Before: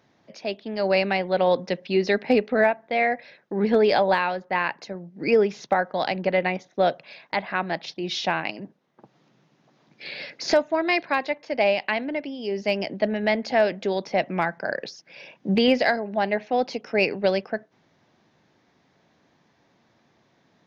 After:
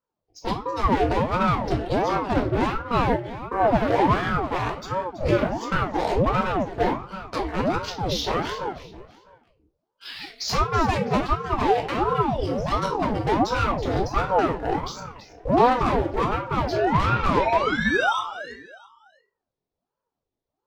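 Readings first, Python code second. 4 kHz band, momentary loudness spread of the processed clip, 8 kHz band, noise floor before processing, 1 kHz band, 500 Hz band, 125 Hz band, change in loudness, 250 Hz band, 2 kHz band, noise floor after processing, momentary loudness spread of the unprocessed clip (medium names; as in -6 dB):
-1.5 dB, 10 LU, no reading, -65 dBFS, +5.0 dB, -2.0 dB, +9.5 dB, +0.5 dB, +1.5 dB, -2.0 dB, -85 dBFS, 12 LU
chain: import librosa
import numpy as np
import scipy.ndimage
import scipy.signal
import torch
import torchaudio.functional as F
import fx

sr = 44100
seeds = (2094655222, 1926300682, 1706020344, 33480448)

p1 = fx.noise_reduce_blind(x, sr, reduce_db=25)
p2 = fx.env_lowpass_down(p1, sr, base_hz=2100.0, full_db=-15.5)
p3 = fx.peak_eq(p2, sr, hz=1800.0, db=-12.0, octaves=1.7)
p4 = fx.leveller(p3, sr, passes=1)
p5 = fx.spec_paint(p4, sr, seeds[0], shape='rise', start_s=16.72, length_s=1.48, low_hz=510.0, high_hz=1200.0, level_db=-20.0)
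p6 = 10.0 ** (-24.5 / 20.0) * np.tanh(p5 / 10.0 ** (-24.5 / 20.0))
p7 = p6 + fx.echo_feedback(p6, sr, ms=327, feedback_pct=30, wet_db=-13.5, dry=0)
p8 = fx.room_shoebox(p7, sr, seeds[1], volume_m3=290.0, walls='furnished', distance_m=2.2)
p9 = fx.ring_lfo(p8, sr, carrier_hz=440.0, swing_pct=75, hz=1.4)
y = p9 * librosa.db_to_amplitude(3.5)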